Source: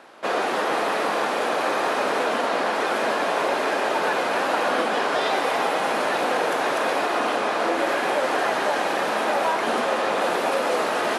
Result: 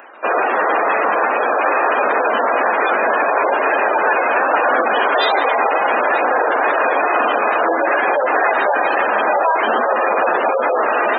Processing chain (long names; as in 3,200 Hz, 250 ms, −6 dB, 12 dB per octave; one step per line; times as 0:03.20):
gate on every frequency bin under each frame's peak −15 dB strong
tape wow and flutter 26 cents
RIAA equalisation recording
level +8.5 dB